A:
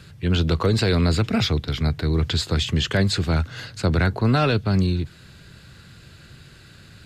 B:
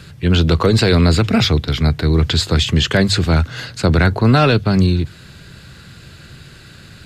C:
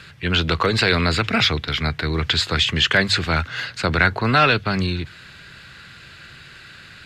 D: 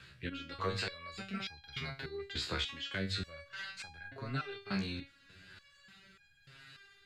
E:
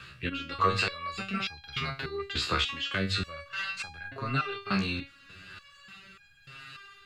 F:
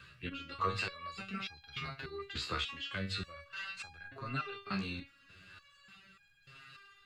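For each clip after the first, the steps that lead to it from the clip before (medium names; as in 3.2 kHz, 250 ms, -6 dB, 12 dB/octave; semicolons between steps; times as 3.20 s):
hum notches 50/100 Hz; trim +7 dB
peaking EQ 2 kHz +14 dB 2.8 oct; trim -10 dB
rotary cabinet horn 1 Hz; compression, threshold -23 dBFS, peak gain reduction 9.5 dB; resonator arpeggio 3.4 Hz 66–810 Hz; trim -1 dB
small resonant body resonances 1.2/2.7 kHz, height 12 dB, ringing for 25 ms; trim +6.5 dB
coarse spectral quantiser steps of 15 dB; crackle 33 per s -59 dBFS; trim -8 dB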